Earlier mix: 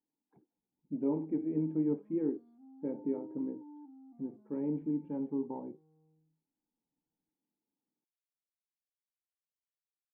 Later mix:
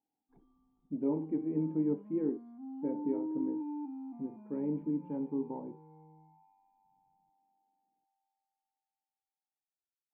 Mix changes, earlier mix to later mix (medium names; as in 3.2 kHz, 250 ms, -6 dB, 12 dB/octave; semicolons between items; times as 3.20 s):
first sound: unmuted; second sound +11.5 dB; reverb: on, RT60 0.35 s